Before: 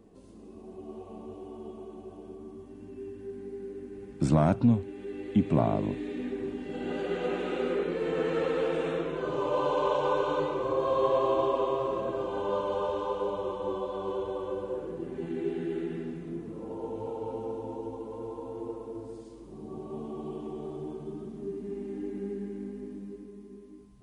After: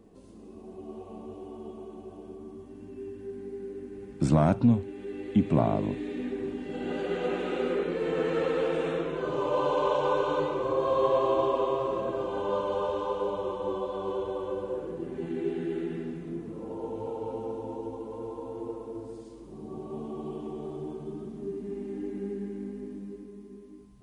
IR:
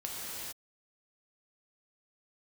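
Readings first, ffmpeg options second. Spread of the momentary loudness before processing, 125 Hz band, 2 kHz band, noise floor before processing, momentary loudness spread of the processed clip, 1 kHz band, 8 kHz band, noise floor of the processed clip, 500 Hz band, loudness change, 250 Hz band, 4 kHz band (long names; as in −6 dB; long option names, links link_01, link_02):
18 LU, +1.0 dB, +1.0 dB, −48 dBFS, 18 LU, +1.0 dB, can't be measured, −47 dBFS, +1.0 dB, +1.0 dB, +1.0 dB, +1.0 dB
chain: -filter_complex "[0:a]asplit=2[link_01][link_02];[1:a]atrim=start_sample=2205,atrim=end_sample=3528[link_03];[link_02][link_03]afir=irnorm=-1:irlink=0,volume=-16dB[link_04];[link_01][link_04]amix=inputs=2:normalize=0"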